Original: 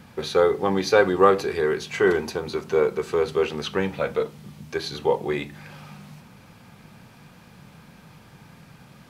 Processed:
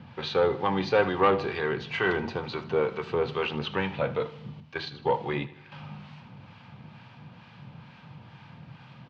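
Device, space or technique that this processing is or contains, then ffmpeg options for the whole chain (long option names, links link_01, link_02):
guitar amplifier with harmonic tremolo: -filter_complex "[0:a]asettb=1/sr,asplit=3[link_01][link_02][link_03];[link_01]atrim=end=4.604[link_04];[link_02]atrim=start=4.6:end=5.72,asetpts=PTS-STARTPTS,afade=type=in:duration=0.004:curve=qsin,afade=type=out:start_time=1.116:duration=0.004:curve=qsin,agate=range=-9dB:threshold=-30dB:ratio=16:detection=peak[link_05];[link_03]atrim=start=5.716[link_06];[link_04][link_05]acrossfade=duration=0.004:curve1=hsin:curve2=qsin[link_07];[link_07][link_06]acrossfade=duration=0.004:curve1=qsin:curve2=hsin,acrossover=split=820[link_08][link_09];[link_08]aeval=exprs='val(0)*(1-0.5/2+0.5/2*cos(2*PI*2.2*n/s))':channel_layout=same[link_10];[link_09]aeval=exprs='val(0)*(1-0.5/2-0.5/2*cos(2*PI*2.2*n/s))':channel_layout=same[link_11];[link_10][link_11]amix=inputs=2:normalize=0,asoftclip=type=tanh:threshold=-13dB,highpass=81,equalizer=frequency=93:width_type=q:width=4:gain=6,equalizer=frequency=130:width_type=q:width=4:gain=8,equalizer=frequency=410:width_type=q:width=4:gain=-5,equalizer=frequency=930:width_type=q:width=4:gain=5,equalizer=frequency=2900:width_type=q:width=4:gain=5,lowpass=frequency=4300:width=0.5412,lowpass=frequency=4300:width=1.3066,aecho=1:1:78|156|234|312|390:0.141|0.0749|0.0397|0.021|0.0111"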